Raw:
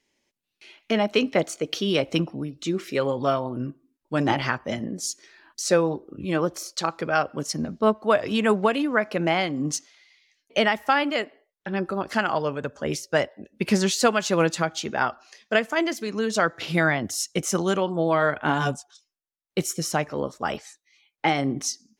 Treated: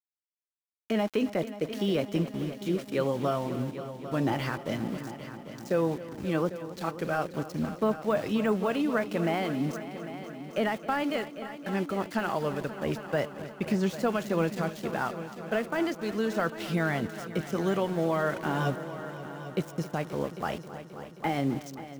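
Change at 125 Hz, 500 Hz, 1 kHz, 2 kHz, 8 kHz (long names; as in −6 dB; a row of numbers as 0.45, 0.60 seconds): −2.5, −5.0, −7.0, −8.5, −17.5 decibels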